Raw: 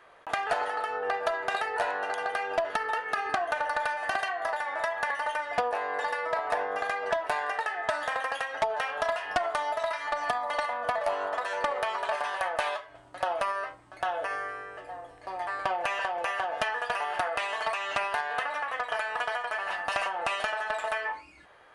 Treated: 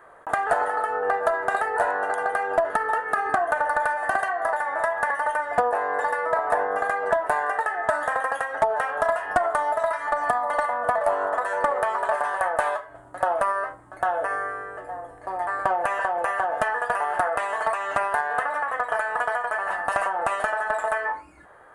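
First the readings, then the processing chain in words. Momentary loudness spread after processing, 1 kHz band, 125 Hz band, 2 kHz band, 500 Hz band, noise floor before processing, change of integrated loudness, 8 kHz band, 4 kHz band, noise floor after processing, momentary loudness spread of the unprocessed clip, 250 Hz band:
4 LU, +6.5 dB, +6.5 dB, +4.5 dB, +6.5 dB, −53 dBFS, +5.5 dB, +3.5 dB, can't be measured, −47 dBFS, 4 LU, +6.5 dB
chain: flat-topped bell 3,700 Hz −14.5 dB
level +6.5 dB

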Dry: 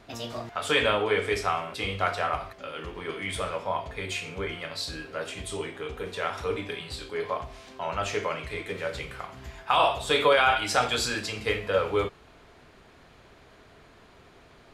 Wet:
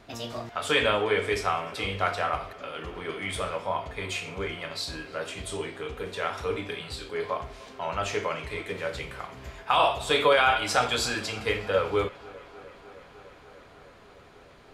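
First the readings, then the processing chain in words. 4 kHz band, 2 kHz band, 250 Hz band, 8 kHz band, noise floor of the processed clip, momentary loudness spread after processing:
0.0 dB, 0.0 dB, 0.0 dB, 0.0 dB, −52 dBFS, 15 LU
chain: tape delay 301 ms, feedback 87%, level −21.5 dB, low-pass 5,000 Hz

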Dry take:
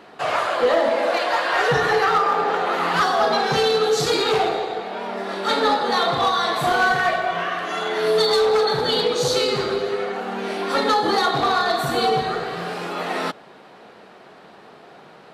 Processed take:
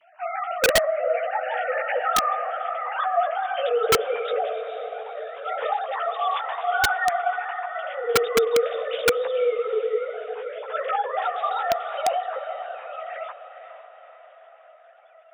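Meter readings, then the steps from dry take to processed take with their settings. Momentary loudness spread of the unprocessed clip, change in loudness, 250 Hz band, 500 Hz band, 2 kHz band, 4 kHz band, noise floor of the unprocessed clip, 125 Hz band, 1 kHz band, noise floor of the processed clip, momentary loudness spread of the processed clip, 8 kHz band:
9 LU, −4.5 dB, −16.0 dB, −3.5 dB, −5.0 dB, −9.5 dB, −46 dBFS, −15.0 dB, −4.5 dB, −51 dBFS, 12 LU, −1.0 dB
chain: three sine waves on the formant tracks
multi-voice chorus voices 4, 0.65 Hz, delay 14 ms, depth 4.9 ms
on a send: feedback delay with all-pass diffusion 476 ms, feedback 53%, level −10.5 dB
on the sum: wrap-around overflow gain 10 dB
level −2 dB

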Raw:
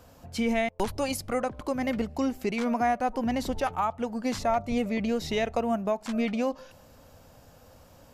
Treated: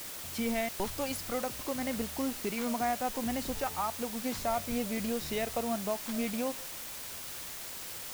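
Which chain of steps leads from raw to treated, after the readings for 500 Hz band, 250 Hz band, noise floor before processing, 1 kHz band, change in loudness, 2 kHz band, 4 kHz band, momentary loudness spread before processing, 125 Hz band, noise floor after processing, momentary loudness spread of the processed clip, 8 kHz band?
−6.0 dB, −6.0 dB, −55 dBFS, −6.0 dB, −5.0 dB, −4.5 dB, −0.5 dB, 4 LU, −5.5 dB, −42 dBFS, 7 LU, +5.5 dB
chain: bit-depth reduction 6 bits, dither triangular
level −6 dB

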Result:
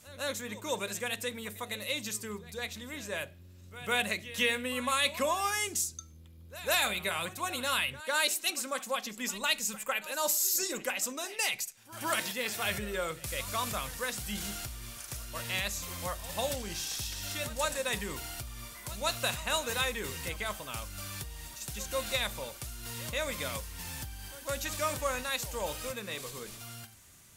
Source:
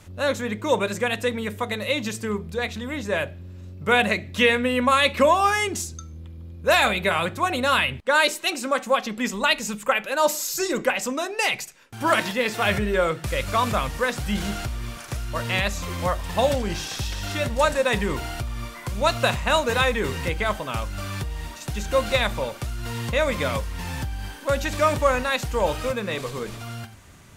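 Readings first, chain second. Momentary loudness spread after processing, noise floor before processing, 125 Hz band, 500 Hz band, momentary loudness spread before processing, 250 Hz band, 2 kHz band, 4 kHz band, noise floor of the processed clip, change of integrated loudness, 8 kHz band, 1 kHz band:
12 LU, −40 dBFS, −14.0 dB, −13.5 dB, 12 LU, −14.0 dB, −10.0 dB, −6.0 dB, −52 dBFS, −9.5 dB, −0.5 dB, −12.5 dB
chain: first-order pre-emphasis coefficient 0.8
backwards echo 153 ms −17 dB

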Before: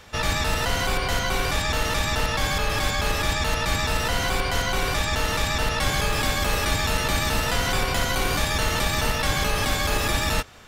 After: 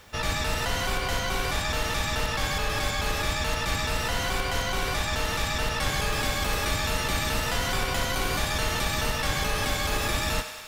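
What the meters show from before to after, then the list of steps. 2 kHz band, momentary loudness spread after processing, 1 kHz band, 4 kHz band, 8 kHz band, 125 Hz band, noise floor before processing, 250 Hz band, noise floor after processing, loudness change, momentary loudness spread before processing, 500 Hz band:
−3.5 dB, 1 LU, −3.5 dB, −3.0 dB, −3.0 dB, −4.0 dB, −26 dBFS, −4.0 dB, −30 dBFS, −3.5 dB, 1 LU, −3.5 dB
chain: on a send: feedback echo with a high-pass in the loop 99 ms, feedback 75%, high-pass 480 Hz, level −10 dB
on the sum: background noise white −59 dBFS
level −4 dB

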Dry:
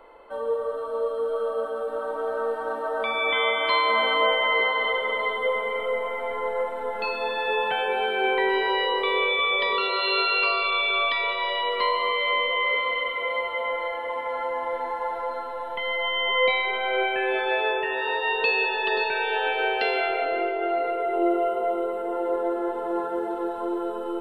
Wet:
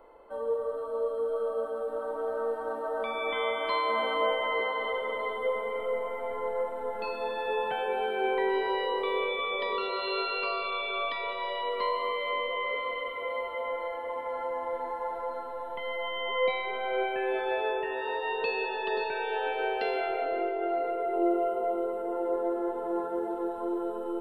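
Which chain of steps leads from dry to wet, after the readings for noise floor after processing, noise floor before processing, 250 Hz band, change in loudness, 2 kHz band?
−37 dBFS, −32 dBFS, −3.0 dB, −6.5 dB, −10.0 dB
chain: parametric band 2,900 Hz −8.5 dB 2.6 octaves
level −2.5 dB

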